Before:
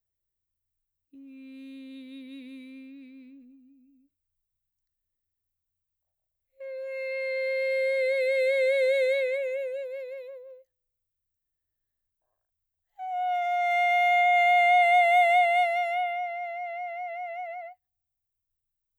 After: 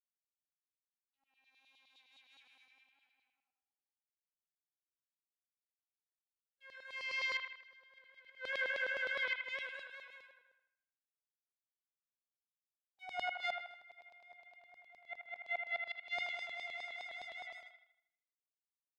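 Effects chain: switching dead time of 0.054 ms; treble ducked by the level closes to 950 Hz, closed at -20.5 dBFS; power-law curve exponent 2; compressor 4:1, threshold -33 dBFS, peak gain reduction 11.5 dB; LFO high-pass saw down 9.7 Hz 890–4400 Hz; flipped gate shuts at -32 dBFS, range -30 dB; notches 50/100/150 Hz; on a send: band-limited delay 79 ms, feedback 47%, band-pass 1500 Hz, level -4 dB; on the sum: gain +5 dB

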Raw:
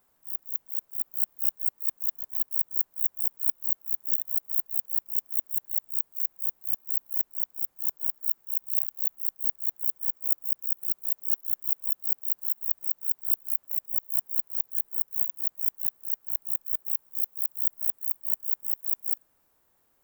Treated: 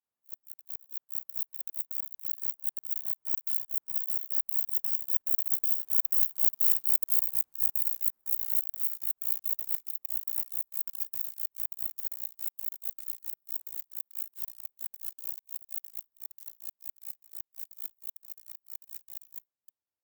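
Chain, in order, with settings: reverse delay 0.162 s, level -6.5 dB; Doppler pass-by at 6.45, 15 m/s, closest 13 m; sample leveller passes 3; in parallel at -2 dB: limiter -20.5 dBFS, peak gain reduction 10 dB; on the sum: pump 115 bpm, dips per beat 2, -17 dB, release 82 ms; gain -5.5 dB; Vorbis 128 kbps 44100 Hz

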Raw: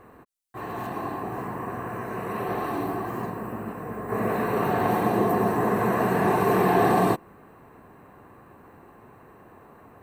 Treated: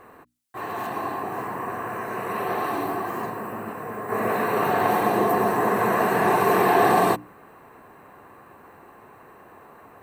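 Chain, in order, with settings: low shelf 340 Hz -9.5 dB; notches 60/120/180/240/300 Hz; gain +5 dB

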